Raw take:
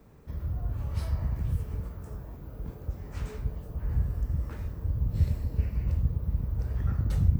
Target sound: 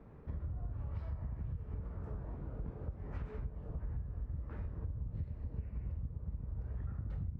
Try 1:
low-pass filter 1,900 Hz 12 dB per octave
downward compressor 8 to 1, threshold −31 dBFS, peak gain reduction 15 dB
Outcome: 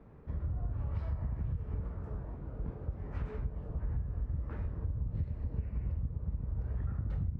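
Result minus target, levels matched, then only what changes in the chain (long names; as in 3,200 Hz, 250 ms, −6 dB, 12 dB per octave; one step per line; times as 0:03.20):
downward compressor: peak gain reduction −5 dB
change: downward compressor 8 to 1, threshold −37 dBFS, peak gain reduction 20 dB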